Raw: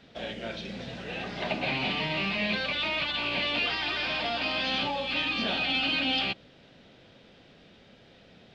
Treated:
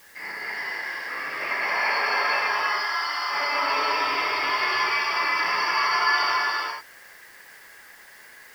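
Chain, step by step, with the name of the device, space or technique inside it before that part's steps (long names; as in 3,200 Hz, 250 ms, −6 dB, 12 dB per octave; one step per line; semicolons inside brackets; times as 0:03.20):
0:02.39–0:03.30: flat-topped bell 1,300 Hz −12.5 dB
reverb whose tail is shaped and stops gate 500 ms flat, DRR −6.5 dB
split-band scrambled radio (band-splitting scrambler in four parts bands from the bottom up 2143; band-pass filter 370–3,400 Hz; white noise bed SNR 28 dB)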